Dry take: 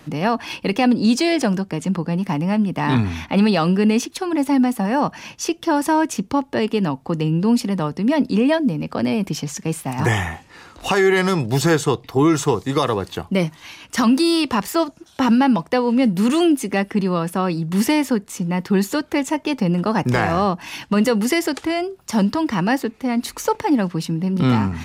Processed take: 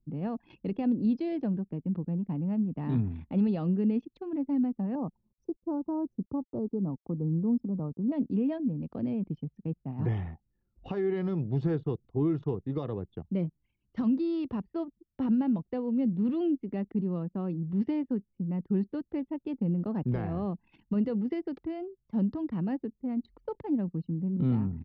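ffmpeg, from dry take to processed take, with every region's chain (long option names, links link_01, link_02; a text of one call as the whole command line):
ffmpeg -i in.wav -filter_complex "[0:a]asettb=1/sr,asplit=3[link_01][link_02][link_03];[link_01]atrim=end=4.954[link_04];[link_02]atrim=start=4.95:end=8.12,asetpts=PTS-STARTPTS,afade=type=in:duration=0.004:curve=qsin,afade=type=out:start_time=3.166:duration=0.004:curve=qsin,asuperstop=centerf=2600:order=12:qfactor=0.7,aeval=exprs='val(0)*gte(abs(val(0)),0.0106)':channel_layout=same[link_05];[link_03]atrim=start=8.116[link_06];[link_04][link_05]acrossfade=duration=0.004:curve1=hsin:curve2=qsin[link_07];[link_07][link_06]acrossfade=duration=0.004:curve1=qsin:curve2=hsin,lowpass=frequency=4100:width=0.5412,lowpass=frequency=4100:width=1.3066,anlmdn=63.1,firequalizer=gain_entry='entry(140,0);entry(960,-16);entry(1800,-19)':delay=0.05:min_phase=1,volume=-8.5dB" out.wav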